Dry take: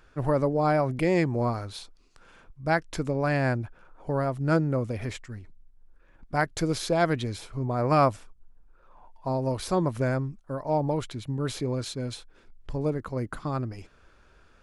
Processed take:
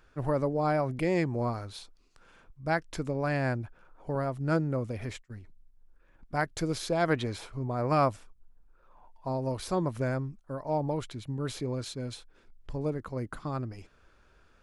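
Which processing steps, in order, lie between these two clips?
4.15–5.31 s: gate -39 dBFS, range -22 dB; 7.08–7.50 s: peaking EQ 960 Hz +8 dB 2.9 oct; trim -4 dB

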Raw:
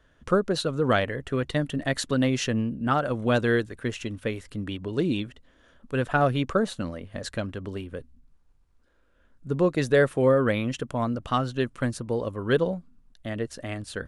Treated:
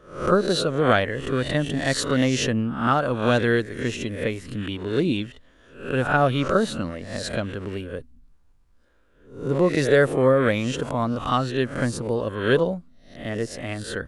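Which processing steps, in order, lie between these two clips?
reverse spectral sustain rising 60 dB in 0.49 s; trim +2 dB

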